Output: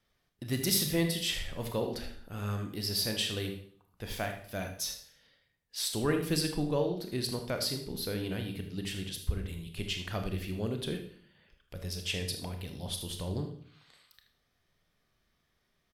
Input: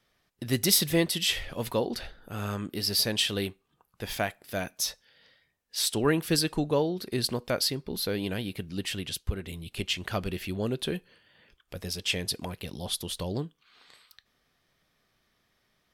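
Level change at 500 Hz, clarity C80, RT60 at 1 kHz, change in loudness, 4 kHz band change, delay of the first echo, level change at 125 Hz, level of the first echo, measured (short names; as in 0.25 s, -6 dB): -4.5 dB, 11.5 dB, 0.55 s, -4.5 dB, -5.5 dB, 78 ms, -1.5 dB, -12.0 dB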